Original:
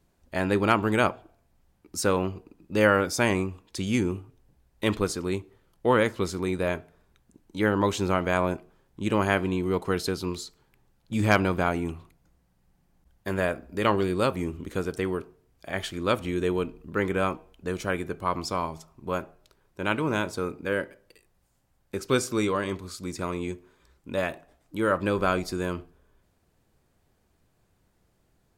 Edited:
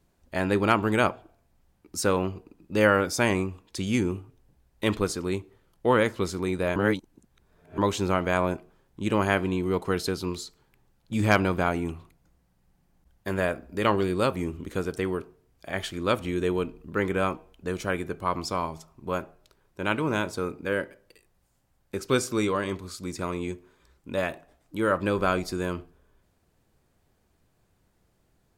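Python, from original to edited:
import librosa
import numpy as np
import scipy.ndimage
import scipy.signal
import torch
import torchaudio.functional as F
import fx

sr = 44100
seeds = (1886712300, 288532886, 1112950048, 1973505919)

y = fx.edit(x, sr, fx.reverse_span(start_s=6.76, length_s=1.02), tone=tone)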